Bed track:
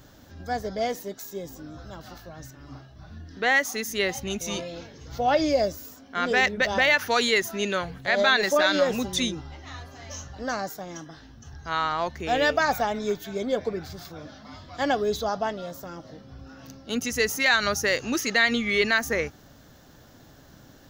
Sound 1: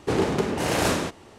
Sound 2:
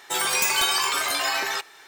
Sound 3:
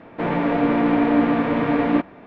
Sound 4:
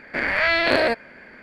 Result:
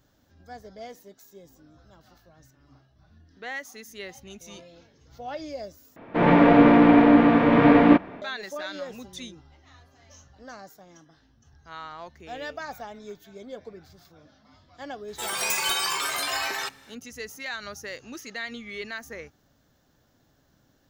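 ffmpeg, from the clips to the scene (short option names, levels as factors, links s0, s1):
-filter_complex "[0:a]volume=0.211[s0];[3:a]dynaudnorm=f=170:g=3:m=3.76[s1];[2:a]dynaudnorm=f=110:g=5:m=1.68[s2];[s0]asplit=2[s3][s4];[s3]atrim=end=5.964[s5];[s1]atrim=end=2.26,asetpts=PTS-STARTPTS,volume=0.75[s6];[s4]atrim=start=8.216[s7];[s2]atrim=end=1.87,asetpts=PTS-STARTPTS,volume=0.398,afade=t=in:d=0.004:c=hsin,afade=t=out:st=1.866:d=0.004:c=hsin,adelay=665028S[s8];[s5][s6]acrossfade=d=0.004:c1=hsin:c2=hsin[s9];[s9][s7]acrossfade=d=0.004:c1=hsin:c2=hsin[s10];[s10][s8]amix=inputs=2:normalize=0"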